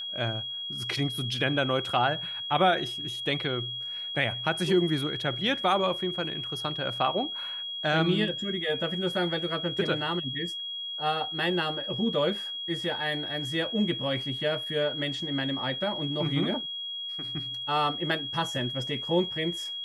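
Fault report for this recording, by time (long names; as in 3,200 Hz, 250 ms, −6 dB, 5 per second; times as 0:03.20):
whistle 3,300 Hz −33 dBFS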